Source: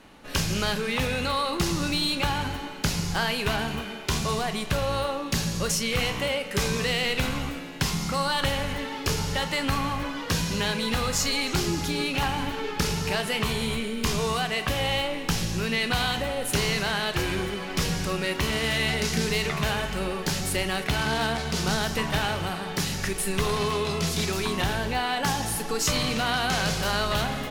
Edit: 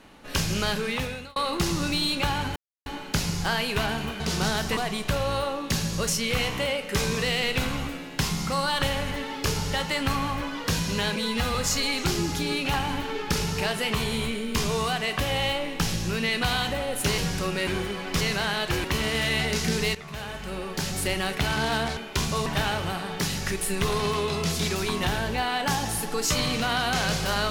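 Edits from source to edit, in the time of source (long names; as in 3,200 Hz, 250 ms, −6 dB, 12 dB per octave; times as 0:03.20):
0:00.86–0:01.36: fade out
0:02.56: splice in silence 0.30 s
0:03.90–0:04.39: swap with 0:21.46–0:22.03
0:10.78–0:11.04: time-stretch 1.5×
0:16.67–0:17.30: swap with 0:17.84–0:18.33
0:19.44–0:20.60: fade in, from −15.5 dB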